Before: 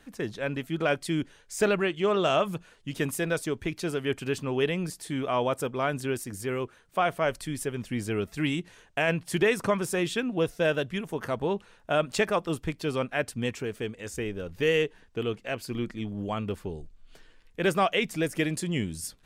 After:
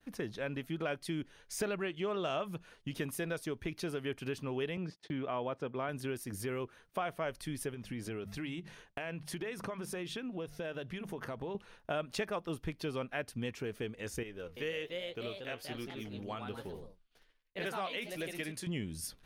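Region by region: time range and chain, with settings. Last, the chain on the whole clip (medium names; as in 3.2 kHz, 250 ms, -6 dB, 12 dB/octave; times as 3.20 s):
4.77–5.89 s: gate -42 dBFS, range -27 dB + high-pass 93 Hz + distance through air 180 m
7.74–11.55 s: treble shelf 9.4 kHz -4.5 dB + hum notches 50/100/150/200 Hz + compression 2.5:1, threshold -38 dBFS
14.23–18.67 s: bass shelf 480 Hz -7.5 dB + flange 1.2 Hz, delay 4.6 ms, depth 8.8 ms, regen +73% + ever faster or slower copies 335 ms, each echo +2 st, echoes 2, each echo -6 dB
whole clip: expander -52 dBFS; peaking EQ 7.6 kHz -9.5 dB 0.27 oct; compression 2.5:1, threshold -38 dBFS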